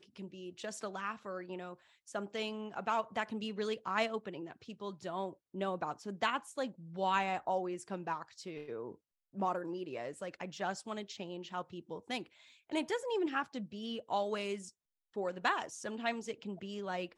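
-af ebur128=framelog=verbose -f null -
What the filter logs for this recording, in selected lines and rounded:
Integrated loudness:
  I:         -38.7 LUFS
  Threshold: -48.9 LUFS
Loudness range:
  LRA:         4.2 LU
  Threshold: -58.7 LUFS
  LRA low:   -41.2 LUFS
  LRA high:  -37.0 LUFS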